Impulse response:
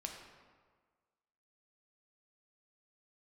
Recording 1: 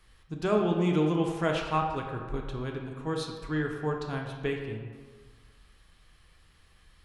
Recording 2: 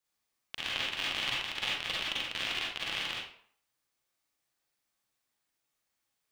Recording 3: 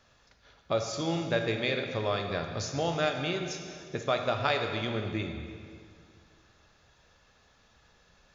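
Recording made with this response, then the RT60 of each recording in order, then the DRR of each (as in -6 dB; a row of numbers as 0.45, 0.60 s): 1; 1.6, 0.55, 2.2 s; 1.0, -5.5, 4.0 dB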